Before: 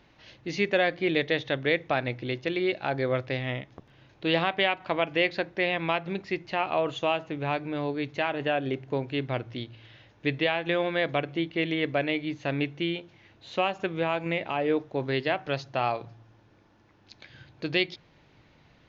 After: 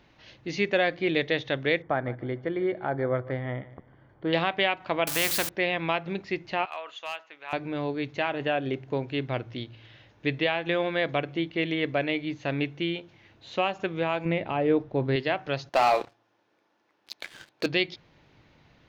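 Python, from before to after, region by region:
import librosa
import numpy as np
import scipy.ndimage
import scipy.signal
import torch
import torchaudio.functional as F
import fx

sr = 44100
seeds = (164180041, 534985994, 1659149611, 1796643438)

y = fx.chain(x, sr, fx.savgol(points=41),
    fx.echo_feedback(ms=150, feedback_pct=30, wet_db=-18), at=(1.82, 4.33))
y = fx.chain(y, sr, fx.crossing_spikes(level_db=-28.0),
    fx.spectral_comp(ratio=2.0), at=(5.07, 5.49))
y = fx.chain(y, sr, fx.highpass(hz=1300.0, slope=12),
    fx.high_shelf(hz=3000.0, db=-8.5),
    fx.overload_stage(gain_db=25.0), at=(6.65, 7.53))
y = fx.chain(y, sr, fx.lowpass(hz=6000.0, slope=24),
    fx.tilt_eq(slope=-2.0), at=(14.25, 15.16))
y = fx.chain(y, sr, fx.highpass(hz=370.0, slope=12),
    fx.leveller(passes=3), at=(15.69, 17.66))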